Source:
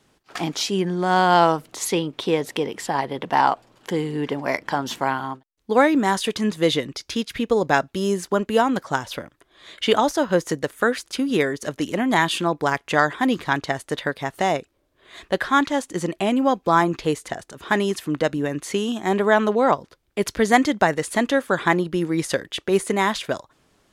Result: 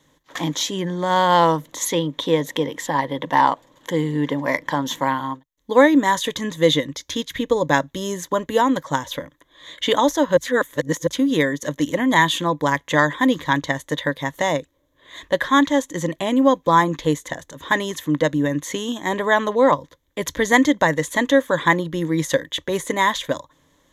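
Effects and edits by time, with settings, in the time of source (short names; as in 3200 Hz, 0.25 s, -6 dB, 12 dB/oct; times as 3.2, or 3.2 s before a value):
10.37–11.07 reverse
whole clip: ripple EQ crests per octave 1.1, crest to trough 11 dB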